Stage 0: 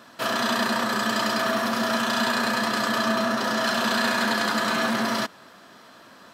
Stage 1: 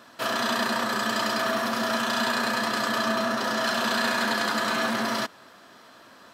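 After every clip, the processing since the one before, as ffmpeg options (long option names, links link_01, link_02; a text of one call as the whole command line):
ffmpeg -i in.wav -af "equalizer=frequency=180:width=2.2:gain=-4,volume=-1.5dB" out.wav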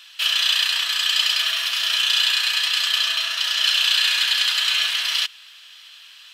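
ffmpeg -i in.wav -af "highpass=frequency=2900:width_type=q:width=4,acontrast=49" out.wav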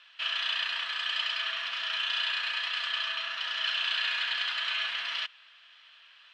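ffmpeg -i in.wav -af "highpass=190,lowpass=2200,volume=-4.5dB" out.wav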